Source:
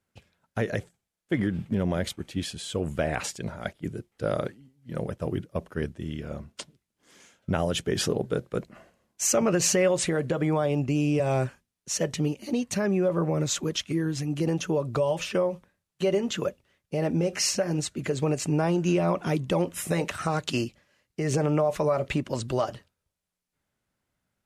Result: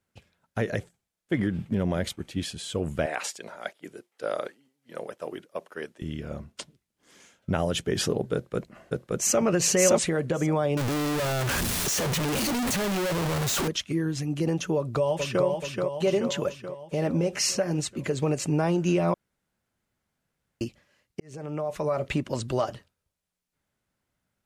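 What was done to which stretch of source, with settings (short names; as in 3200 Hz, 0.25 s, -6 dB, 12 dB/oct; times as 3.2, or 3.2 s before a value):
3.06–6.02 HPF 460 Hz
8.34–9.41 echo throw 0.57 s, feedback 10%, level 0 dB
10.77–13.68 infinite clipping
14.76–15.45 echo throw 0.43 s, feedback 60%, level -4 dB
19.14–20.61 room tone
21.2–22.14 fade in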